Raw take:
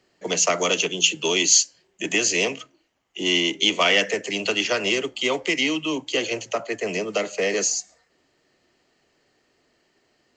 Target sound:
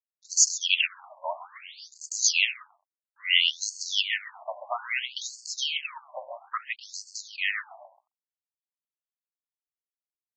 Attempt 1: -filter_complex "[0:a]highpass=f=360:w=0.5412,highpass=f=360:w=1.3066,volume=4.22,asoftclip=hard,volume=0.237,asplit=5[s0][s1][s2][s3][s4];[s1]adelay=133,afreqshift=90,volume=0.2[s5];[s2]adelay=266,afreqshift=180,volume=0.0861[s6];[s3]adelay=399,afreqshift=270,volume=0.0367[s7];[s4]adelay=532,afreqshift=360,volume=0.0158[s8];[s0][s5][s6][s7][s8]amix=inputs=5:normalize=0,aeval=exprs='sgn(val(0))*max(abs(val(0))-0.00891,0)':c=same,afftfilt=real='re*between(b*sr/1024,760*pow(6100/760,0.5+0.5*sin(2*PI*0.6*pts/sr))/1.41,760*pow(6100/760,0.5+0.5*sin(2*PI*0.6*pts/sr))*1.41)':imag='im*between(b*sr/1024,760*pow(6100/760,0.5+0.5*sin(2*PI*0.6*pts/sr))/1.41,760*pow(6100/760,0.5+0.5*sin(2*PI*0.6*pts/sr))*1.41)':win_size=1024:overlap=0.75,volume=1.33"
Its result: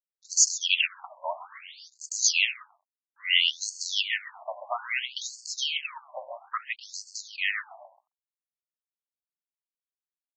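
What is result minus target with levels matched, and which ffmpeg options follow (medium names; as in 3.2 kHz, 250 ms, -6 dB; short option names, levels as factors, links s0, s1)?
overload inside the chain: distortion +17 dB
-filter_complex "[0:a]highpass=f=360:w=0.5412,highpass=f=360:w=1.3066,volume=2.11,asoftclip=hard,volume=0.473,asplit=5[s0][s1][s2][s3][s4];[s1]adelay=133,afreqshift=90,volume=0.2[s5];[s2]adelay=266,afreqshift=180,volume=0.0861[s6];[s3]adelay=399,afreqshift=270,volume=0.0367[s7];[s4]adelay=532,afreqshift=360,volume=0.0158[s8];[s0][s5][s6][s7][s8]amix=inputs=5:normalize=0,aeval=exprs='sgn(val(0))*max(abs(val(0))-0.00891,0)':c=same,afftfilt=real='re*between(b*sr/1024,760*pow(6100/760,0.5+0.5*sin(2*PI*0.6*pts/sr))/1.41,760*pow(6100/760,0.5+0.5*sin(2*PI*0.6*pts/sr))*1.41)':imag='im*between(b*sr/1024,760*pow(6100/760,0.5+0.5*sin(2*PI*0.6*pts/sr))/1.41,760*pow(6100/760,0.5+0.5*sin(2*PI*0.6*pts/sr))*1.41)':win_size=1024:overlap=0.75,volume=1.33"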